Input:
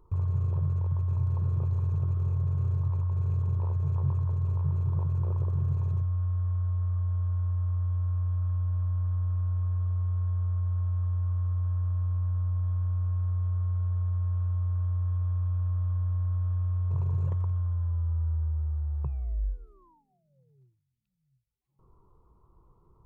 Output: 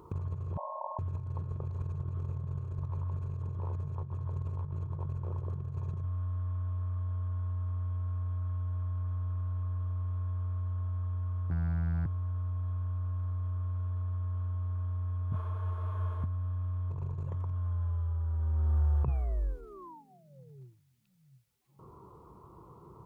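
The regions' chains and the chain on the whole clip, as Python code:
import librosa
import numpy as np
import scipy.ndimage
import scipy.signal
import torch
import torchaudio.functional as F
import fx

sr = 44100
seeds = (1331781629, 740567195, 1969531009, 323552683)

y = fx.chain(x, sr, fx.brickwall_bandpass(low_hz=540.0, high_hz=1100.0),
    fx.env_flatten(amount_pct=70), at=(0.57, 0.99))
y = fx.chain(y, sr, fx.robotise(hz=83.4),
    fx.highpass(hz=60.0, slope=12),
    fx.doppler_dist(depth_ms=0.87), at=(11.5, 12.06))
y = fx.chain(y, sr, fx.highpass(hz=150.0, slope=12),
    fx.detune_double(cents=48), at=(15.32, 16.24))
y = scipy.signal.sosfilt(scipy.signal.butter(2, 120.0, 'highpass', fs=sr, output='sos'), y)
y = fx.over_compress(y, sr, threshold_db=-38.0, ratio=-0.5)
y = F.gain(torch.from_numpy(y), 7.0).numpy()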